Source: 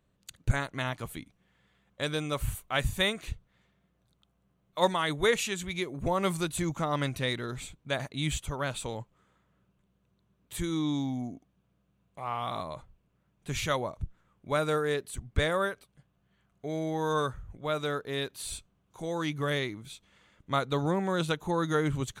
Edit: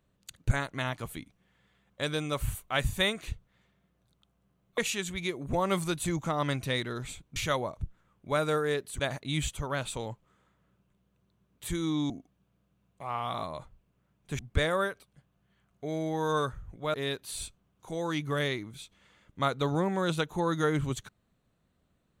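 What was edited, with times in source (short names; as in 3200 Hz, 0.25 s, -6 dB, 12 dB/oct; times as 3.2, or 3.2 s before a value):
4.78–5.31 cut
10.99–11.27 cut
13.56–15.2 move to 7.89
17.75–18.05 cut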